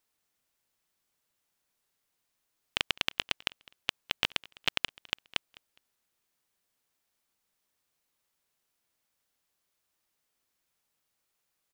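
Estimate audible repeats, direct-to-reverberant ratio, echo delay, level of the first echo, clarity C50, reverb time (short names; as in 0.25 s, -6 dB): 2, none, 0.206 s, -23.5 dB, none, none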